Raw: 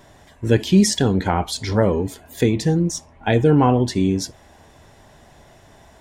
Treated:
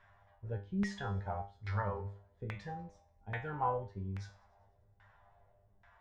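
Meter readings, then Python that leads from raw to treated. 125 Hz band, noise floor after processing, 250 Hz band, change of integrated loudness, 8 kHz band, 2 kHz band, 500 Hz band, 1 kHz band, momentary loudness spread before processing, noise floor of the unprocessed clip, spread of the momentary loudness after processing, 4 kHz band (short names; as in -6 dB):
-19.0 dB, -69 dBFS, -24.5 dB, -20.5 dB, under -30 dB, -15.0 dB, -23.0 dB, -14.0 dB, 10 LU, -50 dBFS, 12 LU, -28.5 dB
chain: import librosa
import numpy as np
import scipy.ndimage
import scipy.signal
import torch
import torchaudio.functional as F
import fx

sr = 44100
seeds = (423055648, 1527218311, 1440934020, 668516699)

y = fx.peak_eq(x, sr, hz=1300.0, db=3.0, octaves=0.26)
y = fx.comb_fb(y, sr, f0_hz=100.0, decay_s=0.41, harmonics='all', damping=0.0, mix_pct=90)
y = fx.filter_lfo_lowpass(y, sr, shape='saw_down', hz=1.2, low_hz=310.0, high_hz=1700.0, q=1.6)
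y = fx.tone_stack(y, sr, knobs='10-0-10')
y = fx.echo_wet_highpass(y, sr, ms=98, feedback_pct=59, hz=2100.0, wet_db=-23)
y = y * 10.0 ** (4.0 / 20.0)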